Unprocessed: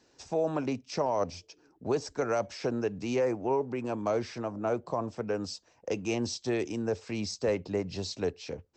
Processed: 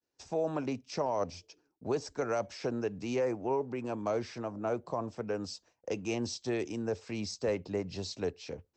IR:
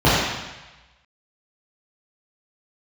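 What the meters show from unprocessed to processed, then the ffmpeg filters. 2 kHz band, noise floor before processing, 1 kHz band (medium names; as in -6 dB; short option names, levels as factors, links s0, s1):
-3.0 dB, -66 dBFS, -3.0 dB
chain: -af "agate=range=0.0224:threshold=0.00224:ratio=3:detection=peak,volume=0.708"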